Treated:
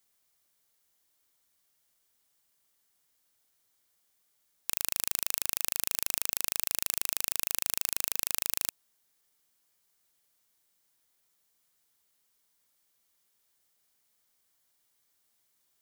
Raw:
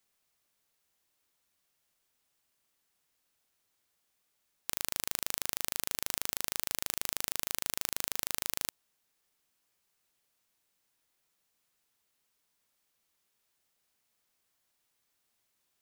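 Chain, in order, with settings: high shelf 5900 Hz +6 dB; notch 2600 Hz, Q 15; in parallel at -7 dB: overloaded stage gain 4 dB; on the sum: gain -3 dB

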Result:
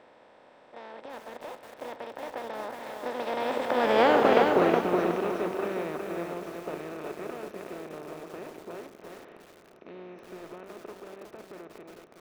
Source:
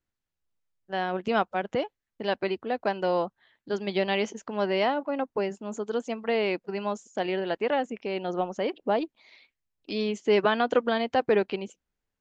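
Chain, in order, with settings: per-bin compression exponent 0.2; Doppler pass-by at 4.18, 60 m/s, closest 16 m; high shelf 2500 Hz -10 dB; pre-echo 33 ms -15 dB; lo-fi delay 0.368 s, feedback 35%, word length 8-bit, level -3.5 dB; gain -1 dB

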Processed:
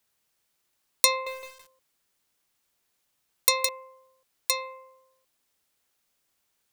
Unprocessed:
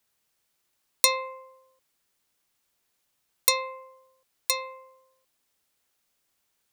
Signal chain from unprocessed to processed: 1.1–3.69 lo-fi delay 0.164 s, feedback 55%, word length 7-bit, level -5 dB

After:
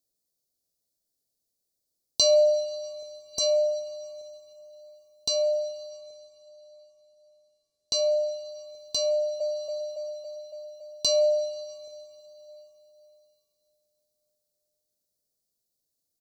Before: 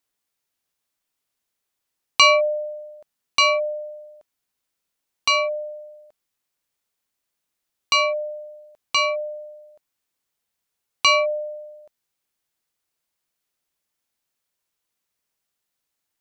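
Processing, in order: Chebyshev band-stop 630–4300 Hz, order 3; 3.2–3.4 spectral repair 2000–4700 Hz both; 5.89–7.94 LPF 8000 Hz 12 dB/oct; plate-style reverb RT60 4.1 s, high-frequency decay 0.85×, DRR 13 dB; 9.12–9.52 echo throw 0.28 s, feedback 70%, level -1 dB

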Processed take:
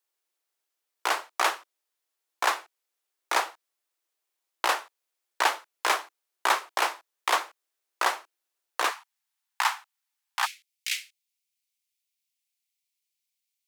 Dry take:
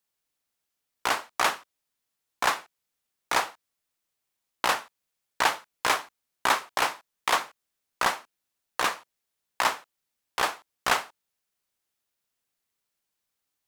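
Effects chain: elliptic high-pass 330 Hz, stop band 60 dB, from 8.9 s 810 Hz, from 10.45 s 2200 Hz

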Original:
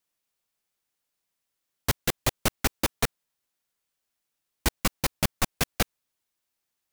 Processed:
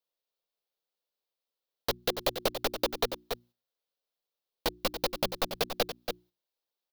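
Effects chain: bell 64 Hz -14.5 dB 1.4 oct; notches 60/120/180/240/300/360 Hz; echo 0.282 s -10.5 dB; compressor 2.5:1, threshold -30 dBFS, peak gain reduction 7 dB; graphic EQ 125/250/500/2000/4000/8000 Hz -4/-4/+10/-6/+8/-12 dB; gate -56 dBFS, range -9 dB; gain +1 dB

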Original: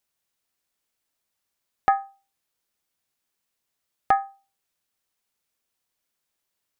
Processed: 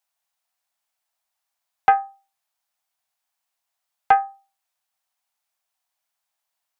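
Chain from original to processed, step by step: resonant low shelf 550 Hz -9.5 dB, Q 3; Doppler distortion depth 0.18 ms; gain -1 dB

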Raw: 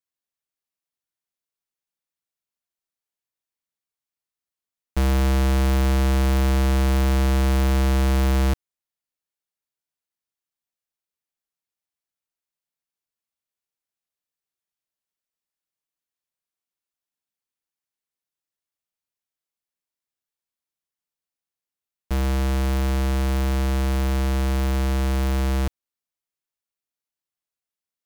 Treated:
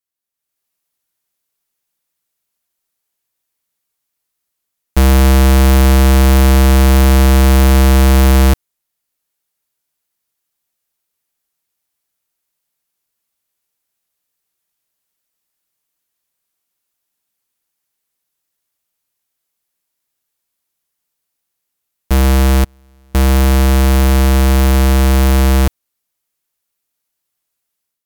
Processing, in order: bell 14000 Hz +6.5 dB 1.1 oct; AGC gain up to 11 dB; 22.64–23.15 flipped gate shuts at -13 dBFS, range -38 dB; gain +1 dB

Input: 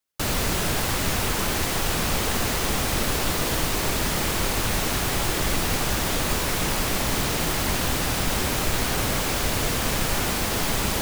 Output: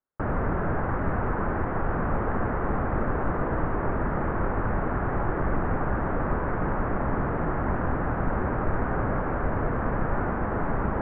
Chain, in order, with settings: steep low-pass 1600 Hz 36 dB/oct

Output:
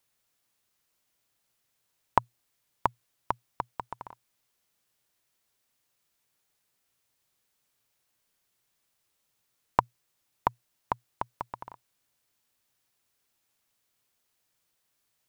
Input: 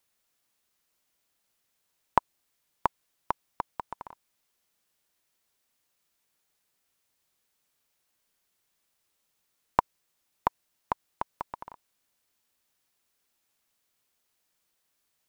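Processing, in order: bell 120 Hz +9.5 dB 0.26 oct

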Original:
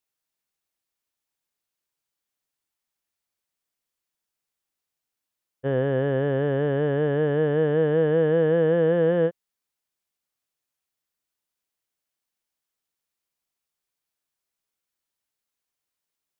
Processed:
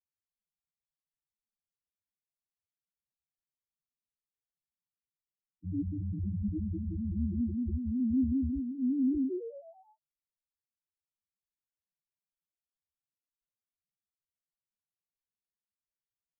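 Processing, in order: median filter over 41 samples; 5.9–7.19 notches 60/120/180/240/300/360/420 Hz; frequency shift -230 Hz; frequency-shifting echo 0.109 s, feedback 48%, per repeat +99 Hz, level -8 dB; loudest bins only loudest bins 2; cascading flanger rising 1.2 Hz

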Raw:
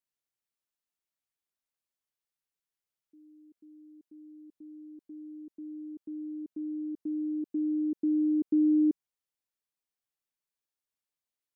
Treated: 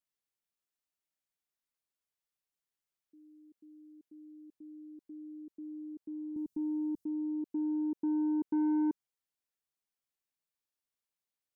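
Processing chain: 6.36–7.05 tone controls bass +13 dB, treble +11 dB; soft clip -24 dBFS, distortion -15 dB; gain -2 dB

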